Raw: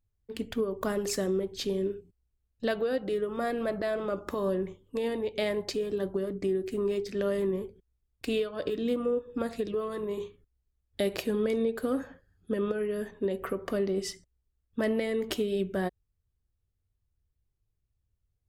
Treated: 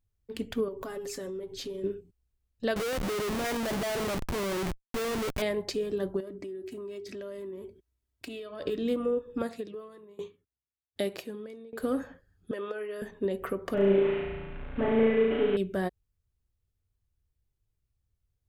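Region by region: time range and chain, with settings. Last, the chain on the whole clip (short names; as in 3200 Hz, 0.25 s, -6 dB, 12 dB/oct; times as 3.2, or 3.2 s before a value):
0.68–1.84 comb 7.3 ms, depth 71% + compressor 4:1, threshold -36 dBFS
2.76–5.42 bell 2400 Hz +9 dB 0.78 oct + Schmitt trigger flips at -38 dBFS
6.2–8.61 HPF 73 Hz + comb 3.1 ms, depth 52% + compressor 5:1, threshold -38 dBFS
9.42–11.8 HPF 120 Hz + dB-ramp tremolo decaying 1.3 Hz, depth 22 dB
12.51–13.02 HPF 520 Hz + high shelf 10000 Hz -10 dB
13.74–15.57 delta modulation 16 kbps, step -39 dBFS + comb 7 ms, depth 37% + flutter echo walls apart 6.1 m, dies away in 1.2 s
whole clip: dry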